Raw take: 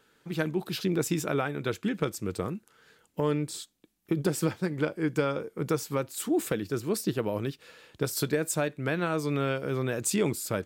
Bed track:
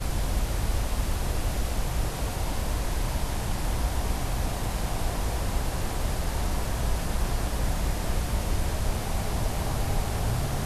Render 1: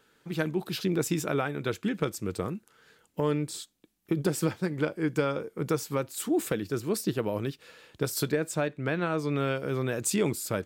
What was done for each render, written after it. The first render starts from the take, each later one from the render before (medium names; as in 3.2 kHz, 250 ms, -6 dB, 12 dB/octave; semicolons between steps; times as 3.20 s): 8.32–9.37 s: treble shelf 7.4 kHz -11.5 dB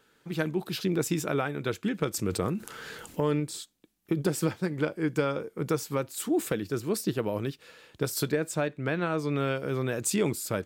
2.14–3.40 s: level flattener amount 50%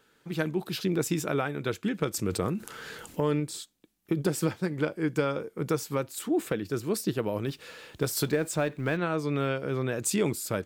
6.19–6.65 s: tone controls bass -1 dB, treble -6 dB; 7.48–8.97 s: companding laws mixed up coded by mu; 9.47–9.99 s: treble shelf 8.2 kHz -8 dB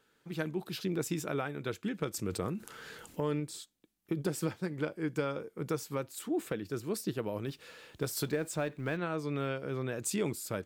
trim -6 dB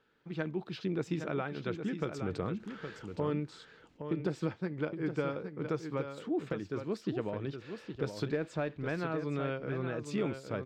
distance through air 180 m; on a send: delay 816 ms -8 dB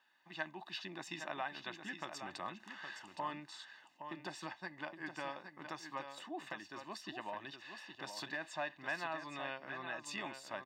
Bessel high-pass 800 Hz, order 2; comb 1.1 ms, depth 96%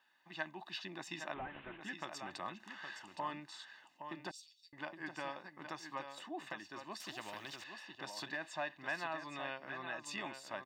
1.34–1.81 s: one-bit delta coder 16 kbps, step -50.5 dBFS; 4.31–4.73 s: inverse Chebyshev high-pass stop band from 1.6 kHz, stop band 50 dB; 7.00–7.64 s: spectrum-flattening compressor 2:1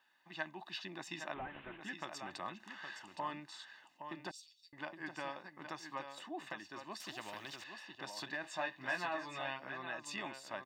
8.42–9.69 s: doubling 16 ms -2.5 dB